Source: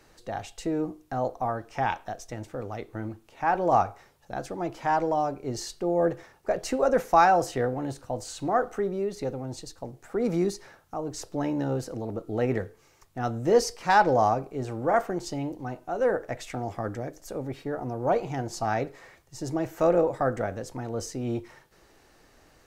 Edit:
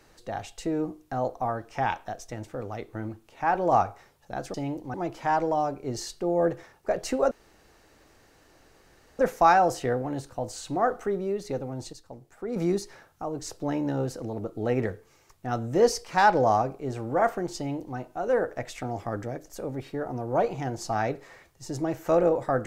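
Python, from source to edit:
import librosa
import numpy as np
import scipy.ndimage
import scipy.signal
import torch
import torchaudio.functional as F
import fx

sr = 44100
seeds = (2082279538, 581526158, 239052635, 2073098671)

y = fx.edit(x, sr, fx.insert_room_tone(at_s=6.91, length_s=1.88),
    fx.clip_gain(start_s=9.65, length_s=0.63, db=-6.0),
    fx.duplicate(start_s=15.29, length_s=0.4, to_s=4.54), tone=tone)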